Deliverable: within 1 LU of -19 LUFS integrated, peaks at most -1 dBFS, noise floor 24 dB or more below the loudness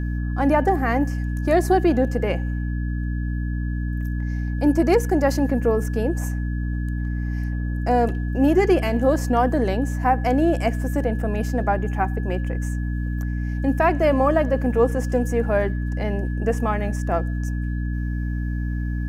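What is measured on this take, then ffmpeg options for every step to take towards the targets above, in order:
hum 60 Hz; harmonics up to 300 Hz; hum level -22 dBFS; steady tone 1700 Hz; tone level -40 dBFS; loudness -22.5 LUFS; peak -7.0 dBFS; loudness target -19.0 LUFS
-> -af "bandreject=f=60:t=h:w=4,bandreject=f=120:t=h:w=4,bandreject=f=180:t=h:w=4,bandreject=f=240:t=h:w=4,bandreject=f=300:t=h:w=4"
-af "bandreject=f=1.7k:w=30"
-af "volume=3.5dB"

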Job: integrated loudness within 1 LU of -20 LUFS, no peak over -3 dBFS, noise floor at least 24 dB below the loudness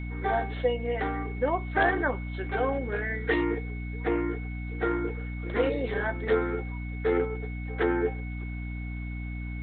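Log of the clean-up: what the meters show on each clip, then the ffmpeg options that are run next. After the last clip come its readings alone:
hum 60 Hz; harmonics up to 300 Hz; hum level -32 dBFS; steady tone 2200 Hz; tone level -44 dBFS; loudness -29.5 LUFS; peak -12.0 dBFS; loudness target -20.0 LUFS
-> -af "bandreject=f=60:t=h:w=6,bandreject=f=120:t=h:w=6,bandreject=f=180:t=h:w=6,bandreject=f=240:t=h:w=6,bandreject=f=300:t=h:w=6"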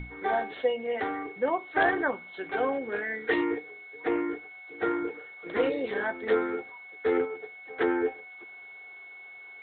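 hum none; steady tone 2200 Hz; tone level -44 dBFS
-> -af "bandreject=f=2.2k:w=30"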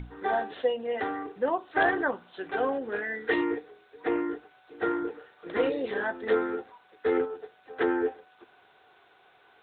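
steady tone none; loudness -30.0 LUFS; peak -12.0 dBFS; loudness target -20.0 LUFS
-> -af "volume=10dB,alimiter=limit=-3dB:level=0:latency=1"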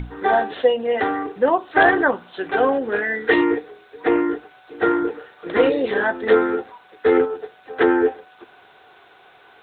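loudness -20.0 LUFS; peak -3.0 dBFS; noise floor -51 dBFS

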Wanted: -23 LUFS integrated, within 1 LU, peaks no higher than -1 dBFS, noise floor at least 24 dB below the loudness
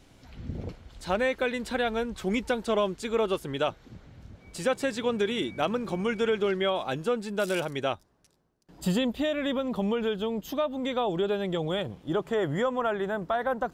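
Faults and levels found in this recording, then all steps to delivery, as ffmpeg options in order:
loudness -29.0 LUFS; peak -13.0 dBFS; loudness target -23.0 LUFS
-> -af "volume=6dB"

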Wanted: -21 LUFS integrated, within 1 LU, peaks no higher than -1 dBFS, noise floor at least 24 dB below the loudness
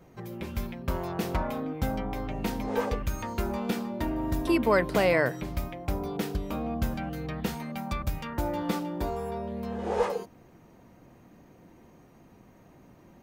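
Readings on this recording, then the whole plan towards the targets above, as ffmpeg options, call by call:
loudness -30.5 LUFS; peak -9.5 dBFS; loudness target -21.0 LUFS
-> -af "volume=9.5dB,alimiter=limit=-1dB:level=0:latency=1"

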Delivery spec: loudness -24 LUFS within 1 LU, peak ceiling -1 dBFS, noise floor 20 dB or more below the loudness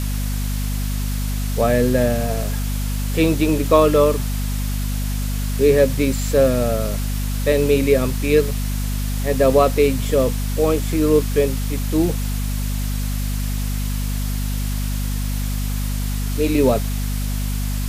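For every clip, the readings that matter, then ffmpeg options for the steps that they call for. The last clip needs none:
hum 50 Hz; harmonics up to 250 Hz; hum level -20 dBFS; noise floor -22 dBFS; noise floor target -40 dBFS; loudness -20.0 LUFS; peak -1.5 dBFS; loudness target -24.0 LUFS
-> -af "bandreject=f=50:t=h:w=6,bandreject=f=100:t=h:w=6,bandreject=f=150:t=h:w=6,bandreject=f=200:t=h:w=6,bandreject=f=250:t=h:w=6"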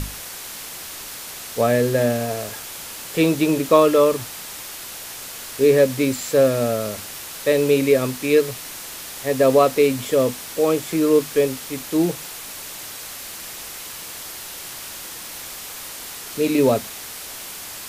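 hum none; noise floor -35 dBFS; noise floor target -41 dBFS
-> -af "afftdn=nr=6:nf=-35"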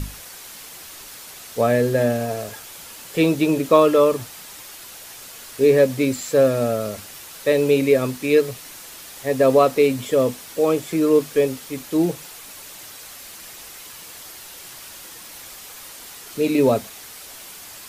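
noise floor -40 dBFS; loudness -19.5 LUFS; peak -2.5 dBFS; loudness target -24.0 LUFS
-> -af "volume=-4.5dB"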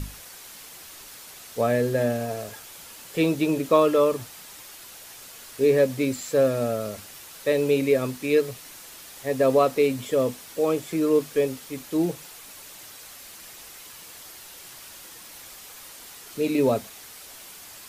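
loudness -24.0 LUFS; peak -7.0 dBFS; noise floor -44 dBFS

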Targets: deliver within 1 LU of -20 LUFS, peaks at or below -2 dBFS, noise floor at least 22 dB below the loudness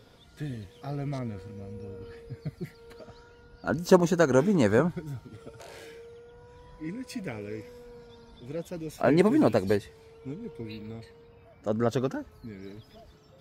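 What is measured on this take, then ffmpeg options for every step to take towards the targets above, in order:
loudness -28.0 LUFS; peak -6.0 dBFS; loudness target -20.0 LUFS
-> -af "volume=8dB,alimiter=limit=-2dB:level=0:latency=1"

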